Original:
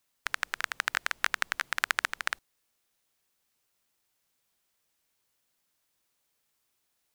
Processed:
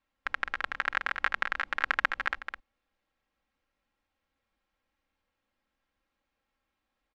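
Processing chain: LPF 2300 Hz 12 dB/oct; low shelf 95 Hz +10.5 dB; comb 3.7 ms; echo 0.21 s -7.5 dB

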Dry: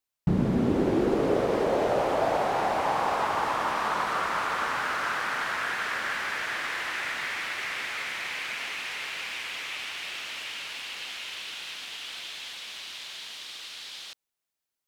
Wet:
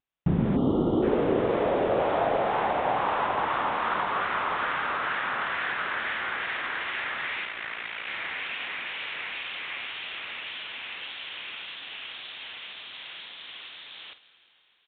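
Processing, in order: wow and flutter 150 cents; 7.44–8.08 ring modulator 28 Hz; doubler 50 ms -13 dB; reverb RT60 4.0 s, pre-delay 80 ms, DRR 14.5 dB; 0.56–1.03 spectral gain 1400–2800 Hz -21 dB; downsampling 8000 Hz

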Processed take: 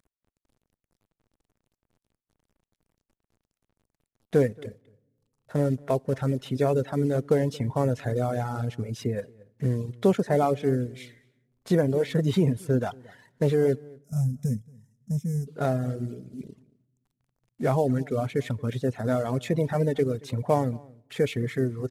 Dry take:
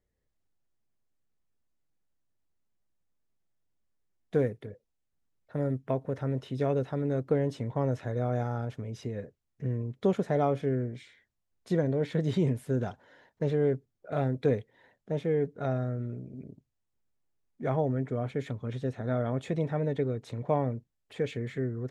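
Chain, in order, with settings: CVSD 64 kbps; spectral gain 13.81–15.47, 250–5000 Hz -24 dB; in parallel at -1.5 dB: limiter -24.5 dBFS, peak gain reduction 10.5 dB; on the sum: outdoor echo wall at 39 m, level -14 dB; on a send at -21 dB: reverb RT60 1.3 s, pre-delay 4 ms; on the sum: reverb removal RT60 1.2 s; gain +3 dB

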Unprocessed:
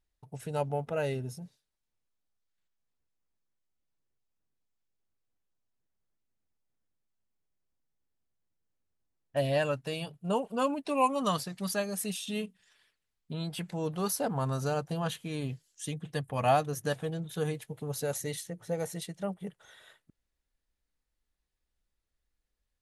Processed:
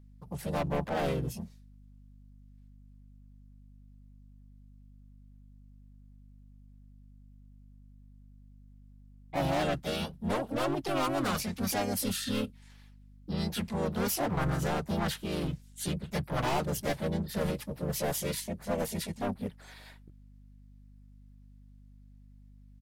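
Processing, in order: overloaded stage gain 31 dB; harmoniser -12 st -5 dB, +3 st -1 dB, +5 st -5 dB; hum 50 Hz, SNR 19 dB

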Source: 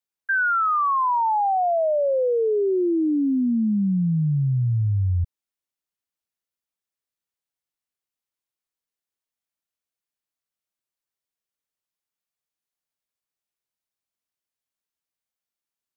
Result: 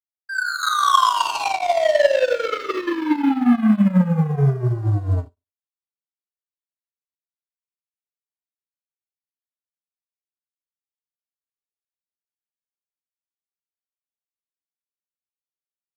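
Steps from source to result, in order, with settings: HPF 62 Hz 12 dB/oct; bell 80 Hz +7.5 dB 0.73 oct; notch 740 Hz, Q 12; in parallel at -2 dB: limiter -21 dBFS, peak gain reduction 9 dB; on the sum: AGC gain up to 11.5 dB; sample leveller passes 3; on a send: thinning echo 0.169 s, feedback 73%, high-pass 990 Hz, level -13 dB; on the sum: Schroeder reverb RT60 0.64 s, combs from 29 ms, DRR 9 dB; power-law curve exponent 3; endless flanger 2 ms -0.26 Hz; gain -2.5 dB

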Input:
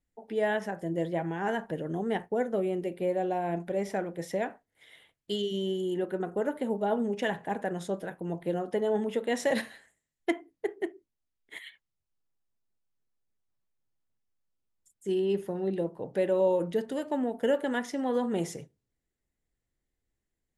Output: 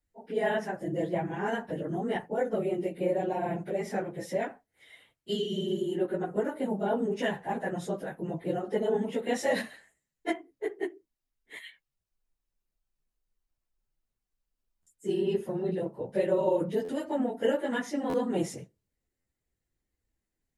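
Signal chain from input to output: phase scrambler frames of 50 ms; notch 3400 Hz, Q 20; stuck buffer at 14.82/16.84/18.09/19.2, samples 512, times 3

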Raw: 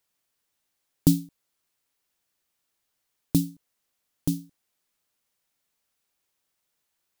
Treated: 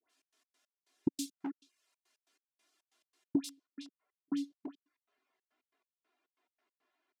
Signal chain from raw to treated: chorus voices 6, 0.85 Hz, delay 15 ms, depth 4.5 ms; dispersion highs, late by 97 ms, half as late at 1300 Hz; LPF 7200 Hz 12 dB/oct, from 3.49 s 2000 Hz; comb 2.9 ms, depth 96%; speakerphone echo 0.37 s, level -14 dB; step gate "xx.x.x..xx.x.x.x" 139 bpm -60 dB; HPF 210 Hz 24 dB/oct; compressor 16:1, threshold -35 dBFS, peak gain reduction 17.5 dB; reverb removal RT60 0.52 s; gain +7 dB

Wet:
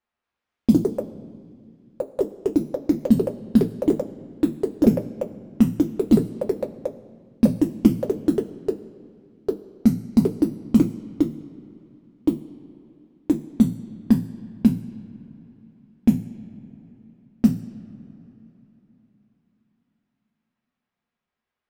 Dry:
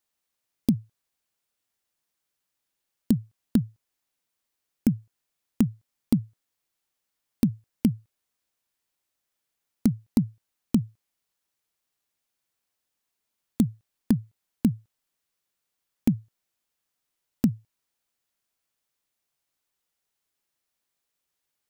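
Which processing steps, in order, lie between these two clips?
two-slope reverb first 0.27 s, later 3.8 s, from -22 dB, DRR -0.5 dB; low-pass opened by the level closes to 2100 Hz, open at -17 dBFS; echoes that change speed 0.232 s, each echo +5 st, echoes 3; gain +1.5 dB

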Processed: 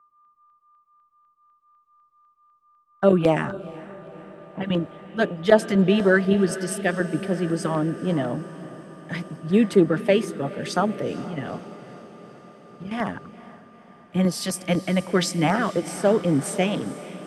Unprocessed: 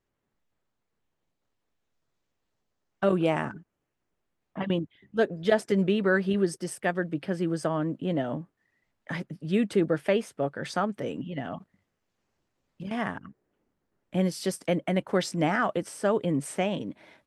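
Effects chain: whine 1200 Hz -49 dBFS; LFO notch saw down 4 Hz 280–3500 Hz; diffused feedback echo 0.473 s, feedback 73%, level -13 dB; three-band expander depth 40%; gain +5.5 dB

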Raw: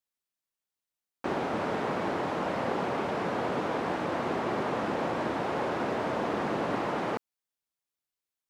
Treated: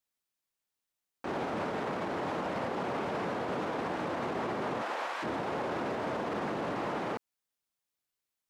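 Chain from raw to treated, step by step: 4.81–5.22 HPF 540 Hz -> 1300 Hz 12 dB/oct; limiter -28 dBFS, peak gain reduction 9.5 dB; gain +2 dB

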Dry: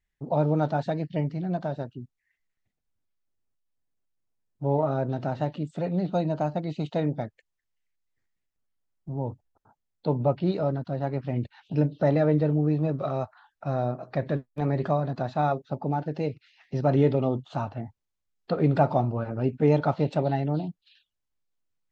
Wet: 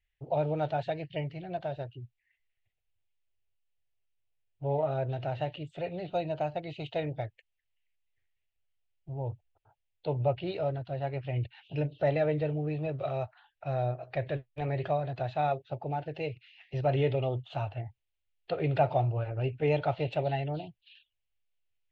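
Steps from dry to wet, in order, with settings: EQ curve 120 Hz 0 dB, 220 Hz -22 dB, 350 Hz -7 dB, 710 Hz -2 dB, 1100 Hz -11 dB, 2800 Hz +7 dB, 5400 Hz -11 dB

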